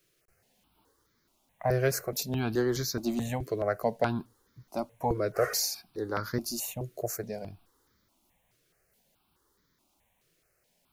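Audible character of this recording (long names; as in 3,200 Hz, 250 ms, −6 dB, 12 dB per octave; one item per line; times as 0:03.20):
a quantiser's noise floor 12 bits, dither none
notches that jump at a steady rate 4.7 Hz 230–2,700 Hz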